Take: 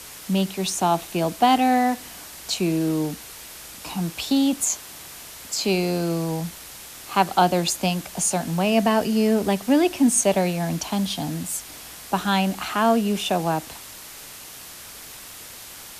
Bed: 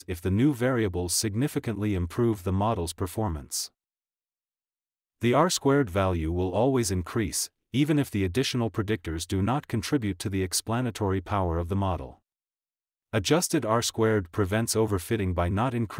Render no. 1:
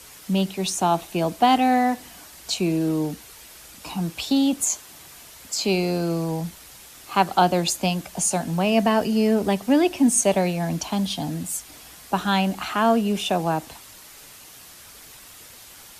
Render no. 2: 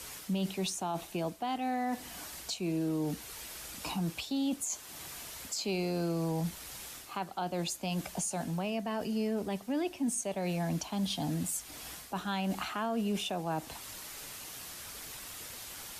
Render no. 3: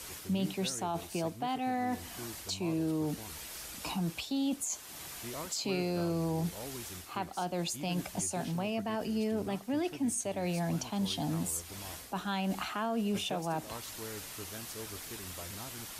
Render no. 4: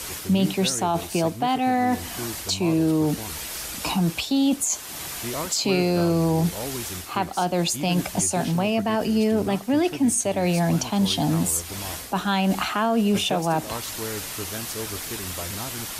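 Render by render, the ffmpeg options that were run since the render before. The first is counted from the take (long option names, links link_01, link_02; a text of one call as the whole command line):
ffmpeg -i in.wav -af "afftdn=noise_reduction=6:noise_floor=-41" out.wav
ffmpeg -i in.wav -af "areverse,acompressor=threshold=-26dB:ratio=6,areverse,alimiter=level_in=1dB:limit=-24dB:level=0:latency=1:release=310,volume=-1dB" out.wav
ffmpeg -i in.wav -i bed.wav -filter_complex "[1:a]volume=-21dB[link_01];[0:a][link_01]amix=inputs=2:normalize=0" out.wav
ffmpeg -i in.wav -af "volume=11.5dB" out.wav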